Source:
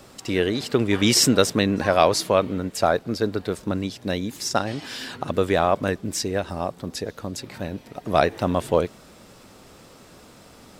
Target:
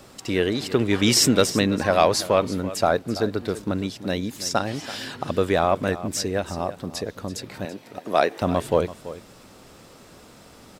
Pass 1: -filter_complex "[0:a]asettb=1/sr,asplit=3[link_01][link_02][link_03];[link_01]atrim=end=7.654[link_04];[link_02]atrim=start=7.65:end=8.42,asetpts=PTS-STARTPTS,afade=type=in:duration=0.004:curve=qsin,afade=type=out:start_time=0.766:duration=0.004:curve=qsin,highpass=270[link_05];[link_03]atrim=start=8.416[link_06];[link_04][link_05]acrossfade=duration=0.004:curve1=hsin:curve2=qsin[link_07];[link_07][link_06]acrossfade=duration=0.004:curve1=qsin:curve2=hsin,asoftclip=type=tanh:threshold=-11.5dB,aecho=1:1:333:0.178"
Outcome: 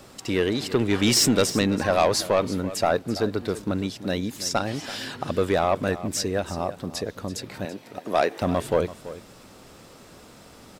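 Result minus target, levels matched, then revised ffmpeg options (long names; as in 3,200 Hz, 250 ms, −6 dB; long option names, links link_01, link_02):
soft clipping: distortion +14 dB
-filter_complex "[0:a]asettb=1/sr,asplit=3[link_01][link_02][link_03];[link_01]atrim=end=7.654[link_04];[link_02]atrim=start=7.65:end=8.42,asetpts=PTS-STARTPTS,afade=type=in:duration=0.004:curve=qsin,afade=type=out:start_time=0.766:duration=0.004:curve=qsin,highpass=270[link_05];[link_03]atrim=start=8.416[link_06];[link_04][link_05]acrossfade=duration=0.004:curve1=hsin:curve2=qsin[link_07];[link_07][link_06]acrossfade=duration=0.004:curve1=qsin:curve2=hsin,asoftclip=type=tanh:threshold=-2dB,aecho=1:1:333:0.178"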